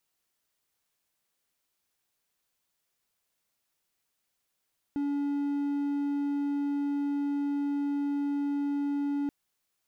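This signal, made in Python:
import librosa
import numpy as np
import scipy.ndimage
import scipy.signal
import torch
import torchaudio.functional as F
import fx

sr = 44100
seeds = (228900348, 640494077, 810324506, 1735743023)

y = 10.0 ** (-25.0 / 20.0) * (1.0 - 4.0 * np.abs(np.mod(285.0 * (np.arange(round(4.33 * sr)) / sr) + 0.25, 1.0) - 0.5))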